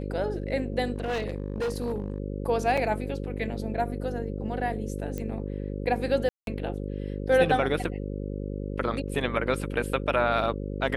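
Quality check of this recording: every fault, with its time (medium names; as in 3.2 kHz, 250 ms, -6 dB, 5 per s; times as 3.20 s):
buzz 50 Hz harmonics 11 -33 dBFS
0.92–2.18 s: clipped -25 dBFS
2.77–2.78 s: dropout 5.3 ms
5.18 s: pop -20 dBFS
6.29–6.47 s: dropout 182 ms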